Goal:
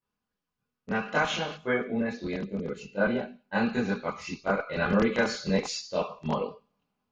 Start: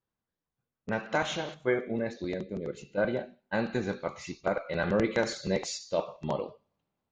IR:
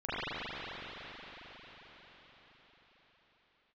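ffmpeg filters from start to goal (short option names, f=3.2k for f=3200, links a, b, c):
-filter_complex "[0:a]lowshelf=f=250:g=-4[a];[1:a]atrim=start_sample=2205,atrim=end_sample=3087,asetrate=79380,aresample=44100[b];[a][b]afir=irnorm=-1:irlink=0,volume=7.5dB"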